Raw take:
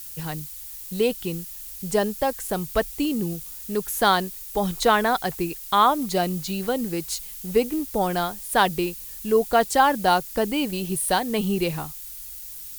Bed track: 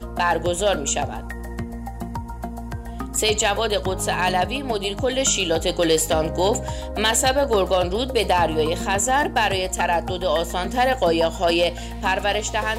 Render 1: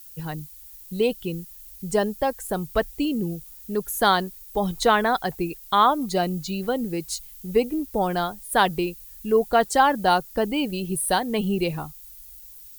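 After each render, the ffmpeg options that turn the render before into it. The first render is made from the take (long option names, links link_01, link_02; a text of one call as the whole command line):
ffmpeg -i in.wav -af "afftdn=noise_reduction=10:noise_floor=-38" out.wav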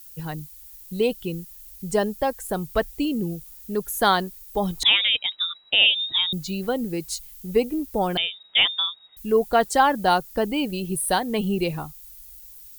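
ffmpeg -i in.wav -filter_complex "[0:a]asettb=1/sr,asplit=3[link_01][link_02][link_03];[link_01]atrim=end=4.834[link_04];[link_02]atrim=start=4.83:end=6.33,asetpts=PTS-STARTPTS,afade=type=in:duration=0.004:curve=qsin,afade=type=out:start_time=1.496:duration=0.004:curve=qsin,lowpass=frequency=3300:width_type=q:width=0.5098,lowpass=frequency=3300:width_type=q:width=0.6013,lowpass=frequency=3300:width_type=q:width=0.9,lowpass=frequency=3300:width_type=q:width=2.563,afreqshift=-3900[link_05];[link_03]atrim=start=6.326[link_06];[link_04][link_05]acrossfade=duration=0.004:curve1=hsin:curve2=qsin[link_07];[link_07][link_06]acrossfade=duration=0.004:curve1=qsin:curve2=hsin,asettb=1/sr,asplit=3[link_08][link_09][link_10];[link_08]atrim=end=8.174[link_11];[link_09]atrim=start=8.17:end=9.17,asetpts=PTS-STARTPTS,afade=type=in:duration=0.004:curve=qsin,afade=type=out:start_time=0.996:duration=0.004:curve=qsin,lowpass=frequency=3200:width_type=q:width=0.5098,lowpass=frequency=3200:width_type=q:width=0.6013,lowpass=frequency=3200:width_type=q:width=0.9,lowpass=frequency=3200:width_type=q:width=2.563,afreqshift=-3800[link_12];[link_10]atrim=start=9.166[link_13];[link_11][link_12]acrossfade=duration=0.004:curve1=hsin:curve2=qsin[link_14];[link_14][link_13]acrossfade=duration=0.004:curve1=qsin:curve2=hsin" out.wav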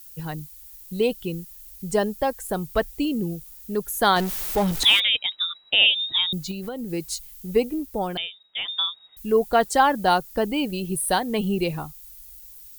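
ffmpeg -i in.wav -filter_complex "[0:a]asettb=1/sr,asplit=3[link_01][link_02][link_03];[link_01]atrim=end=4.164[link_04];[link_02]atrim=start=4.16:end=5,asetpts=PTS-STARTPTS,afade=type=in:duration=0.004:curve=qsin,afade=type=out:start_time=0.836:duration=0.004:curve=qsin,aeval=exprs='val(0)+0.5*0.0562*sgn(val(0))':channel_layout=same[link_05];[link_03]atrim=start=4.996[link_06];[link_04][link_05]acrossfade=duration=0.004:curve1=hsin:curve2=qsin[link_07];[link_07][link_06]acrossfade=duration=0.004:curve1=qsin:curve2=hsin,asettb=1/sr,asplit=3[link_08][link_09][link_10];[link_08]atrim=end=6.514[link_11];[link_09]atrim=start=6.51:end=6.91,asetpts=PTS-STARTPTS,afade=type=in:duration=0.004:curve=qsin,afade=type=out:start_time=0.396:duration=0.004:curve=qsin,acompressor=threshold=-28dB:ratio=5:attack=3.2:release=140:knee=1:detection=peak[link_12];[link_10]atrim=start=6.906[link_13];[link_11][link_12]acrossfade=duration=0.004:curve1=hsin:curve2=qsin[link_14];[link_14][link_13]acrossfade=duration=0.004:curve1=qsin:curve2=hsin,asplit=2[link_15][link_16];[link_15]atrim=end=8.68,asetpts=PTS-STARTPTS,afade=type=out:start_time=7.56:duration=1.12:silence=0.211349[link_17];[link_16]atrim=start=8.68,asetpts=PTS-STARTPTS,afade=type=in:duration=0.004:curve=hsin:silence=0.211349[link_18];[link_17][link_18]concat=n=2:v=0:a=1" out.wav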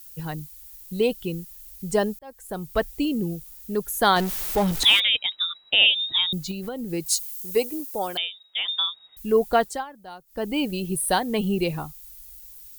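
ffmpeg -i in.wav -filter_complex "[0:a]asettb=1/sr,asplit=3[link_01][link_02][link_03];[link_01]atrim=end=7.064[link_04];[link_02]atrim=start=7.06:end=8.76,asetpts=PTS-STARTPTS,afade=type=in:duration=0.004:curve=qsin,afade=type=out:start_time=1.696:duration=0.004:curve=qsin,bass=frequency=250:gain=-14,treble=frequency=4000:gain=9[link_05];[link_03]atrim=start=8.756[link_06];[link_04][link_05]acrossfade=duration=0.004:curve1=hsin:curve2=qsin[link_07];[link_07][link_06]acrossfade=duration=0.004:curve1=qsin:curve2=hsin,asplit=4[link_08][link_09][link_10][link_11];[link_08]atrim=end=2.19,asetpts=PTS-STARTPTS,afade=type=out:start_time=2.186:duration=0.004:curve=hsin[link_12];[link_09]atrim=start=2.19:end=9.85,asetpts=PTS-STARTPTS,afade=type=in:duration=0.66,afade=type=out:start_time=7.35:duration=0.31:silence=0.0841395[link_13];[link_10]atrim=start=9.85:end=10.26,asetpts=PTS-STARTPTS,volume=-21.5dB[link_14];[link_11]atrim=start=10.26,asetpts=PTS-STARTPTS,afade=type=in:duration=0.31:silence=0.0841395[link_15];[link_12][link_13][link_14][link_15]concat=n=4:v=0:a=1" out.wav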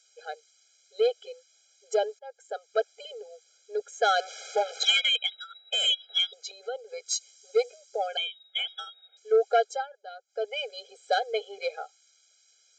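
ffmpeg -i in.wav -af "aresample=16000,asoftclip=type=tanh:threshold=-13dB,aresample=44100,afftfilt=real='re*eq(mod(floor(b*sr/1024/420),2),1)':imag='im*eq(mod(floor(b*sr/1024/420),2),1)':win_size=1024:overlap=0.75" out.wav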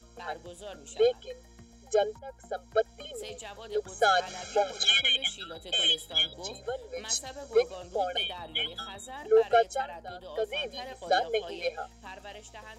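ffmpeg -i in.wav -i bed.wav -filter_complex "[1:a]volume=-23dB[link_01];[0:a][link_01]amix=inputs=2:normalize=0" out.wav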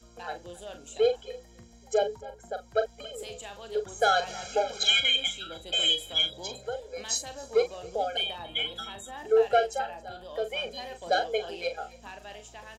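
ffmpeg -i in.wav -filter_complex "[0:a]asplit=2[link_01][link_02];[link_02]adelay=40,volume=-9dB[link_03];[link_01][link_03]amix=inputs=2:normalize=0,aecho=1:1:274:0.0794" out.wav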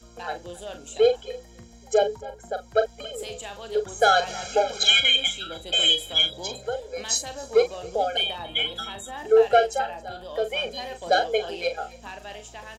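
ffmpeg -i in.wav -af "volume=5dB" out.wav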